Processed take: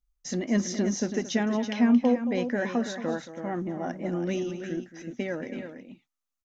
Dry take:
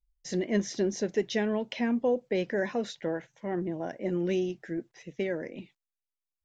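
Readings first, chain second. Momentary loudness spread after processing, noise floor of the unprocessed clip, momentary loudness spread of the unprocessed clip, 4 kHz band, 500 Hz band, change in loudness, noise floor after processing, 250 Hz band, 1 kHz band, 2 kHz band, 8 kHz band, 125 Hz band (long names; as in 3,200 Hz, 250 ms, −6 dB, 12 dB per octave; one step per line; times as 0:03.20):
13 LU, below −85 dBFS, 9 LU, +1.5 dB, −1.0 dB, +3.0 dB, below −85 dBFS, +5.5 dB, +4.0 dB, +2.0 dB, can't be measured, +2.5 dB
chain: thirty-one-band graphic EQ 250 Hz +11 dB, 400 Hz −6 dB, 800 Hz +4 dB, 1,250 Hz +10 dB, 6,300 Hz +6 dB
multi-tap delay 225/329 ms −13.5/−9 dB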